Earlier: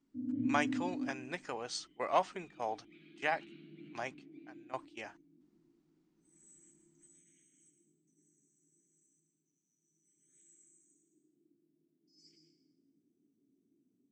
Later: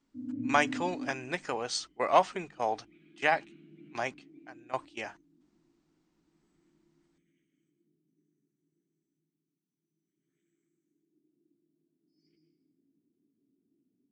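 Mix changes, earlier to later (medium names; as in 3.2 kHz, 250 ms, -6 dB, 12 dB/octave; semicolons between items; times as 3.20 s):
speech +7.0 dB; background: add distance through air 340 m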